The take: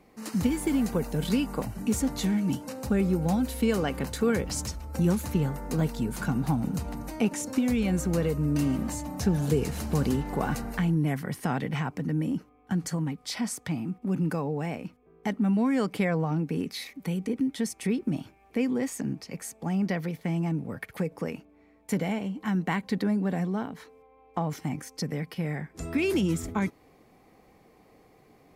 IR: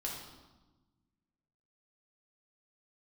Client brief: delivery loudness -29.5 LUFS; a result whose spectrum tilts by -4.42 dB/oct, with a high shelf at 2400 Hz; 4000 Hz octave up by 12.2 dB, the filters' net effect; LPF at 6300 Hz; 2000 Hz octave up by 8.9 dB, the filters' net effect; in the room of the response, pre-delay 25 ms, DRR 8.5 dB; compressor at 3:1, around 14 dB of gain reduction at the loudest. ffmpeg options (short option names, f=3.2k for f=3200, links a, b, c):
-filter_complex "[0:a]lowpass=6.3k,equalizer=f=2k:t=o:g=5,highshelf=f=2.4k:g=7,equalizer=f=4k:t=o:g=8.5,acompressor=threshold=-39dB:ratio=3,asplit=2[a][b];[1:a]atrim=start_sample=2205,adelay=25[c];[b][c]afir=irnorm=-1:irlink=0,volume=-9.5dB[d];[a][d]amix=inputs=2:normalize=0,volume=8.5dB"